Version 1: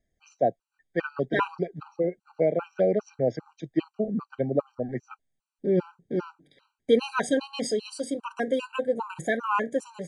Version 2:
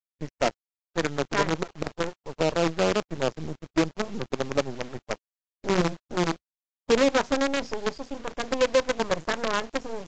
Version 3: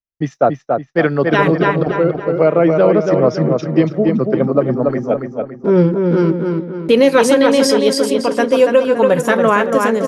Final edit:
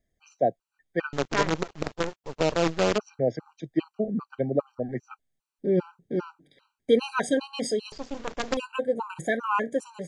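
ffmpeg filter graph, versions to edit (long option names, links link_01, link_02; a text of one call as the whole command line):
ffmpeg -i take0.wav -i take1.wav -filter_complex "[1:a]asplit=2[link_01][link_02];[0:a]asplit=3[link_03][link_04][link_05];[link_03]atrim=end=1.132[link_06];[link_01]atrim=start=1.128:end=2.982[link_07];[link_04]atrim=start=2.978:end=7.922[link_08];[link_02]atrim=start=7.918:end=8.572[link_09];[link_05]atrim=start=8.568[link_10];[link_06][link_07]acrossfade=duration=0.004:curve1=hsin:curve2=hsin[link_11];[link_11][link_08]acrossfade=duration=0.004:curve1=hsin:curve2=hsin[link_12];[link_12][link_09]acrossfade=duration=0.004:curve1=hsin:curve2=hsin[link_13];[link_13][link_10]acrossfade=duration=0.004:curve1=hsin:curve2=hsin" out.wav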